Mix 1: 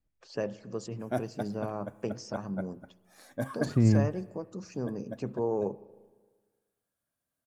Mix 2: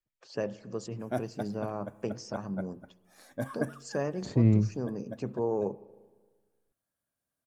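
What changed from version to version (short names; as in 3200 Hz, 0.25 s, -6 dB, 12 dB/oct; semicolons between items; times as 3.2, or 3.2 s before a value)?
second voice: entry +0.60 s; background: send off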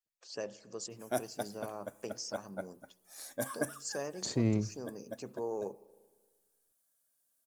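first voice -6.0 dB; master: add tone controls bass -10 dB, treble +14 dB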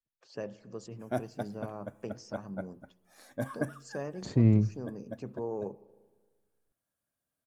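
master: add tone controls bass +10 dB, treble -14 dB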